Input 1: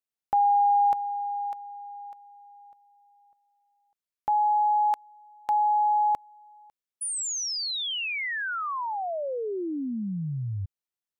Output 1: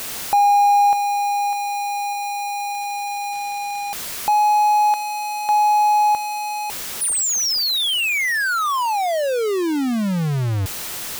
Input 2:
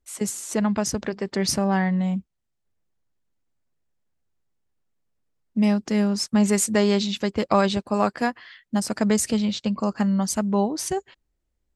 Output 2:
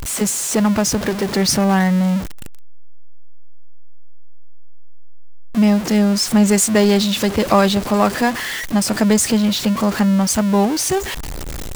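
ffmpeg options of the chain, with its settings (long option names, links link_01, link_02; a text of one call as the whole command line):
ffmpeg -i in.wav -af "aeval=exprs='val(0)+0.5*0.0596*sgn(val(0))':channel_layout=same,volume=4.5dB" out.wav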